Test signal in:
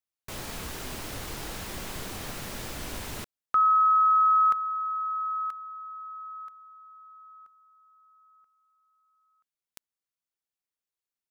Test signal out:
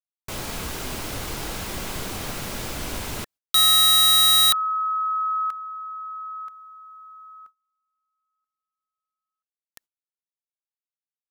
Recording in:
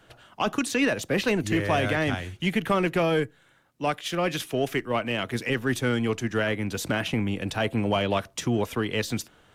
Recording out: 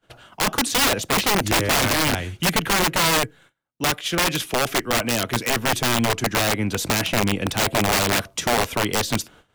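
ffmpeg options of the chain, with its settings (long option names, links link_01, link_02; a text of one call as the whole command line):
ffmpeg -i in.wav -af "bandreject=frequency=1800:width=20,agate=range=-26dB:threshold=-51dB:ratio=3:release=130:detection=rms,aeval=exprs='(mod(8.91*val(0)+1,2)-1)/8.91':channel_layout=same,volume=6dB" out.wav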